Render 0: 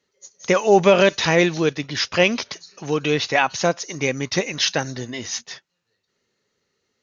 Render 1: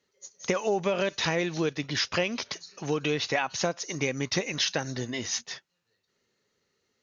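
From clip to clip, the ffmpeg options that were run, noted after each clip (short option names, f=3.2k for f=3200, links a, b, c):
-af "acompressor=threshold=-21dB:ratio=6,volume=-2.5dB"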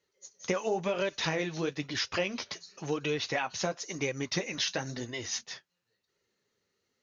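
-af "flanger=delay=2:depth=8.8:regen=-42:speed=0.97:shape=sinusoidal"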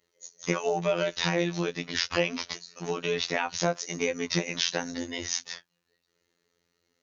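-af "afftfilt=real='hypot(re,im)*cos(PI*b)':imag='0':win_size=2048:overlap=0.75,volume=7dB"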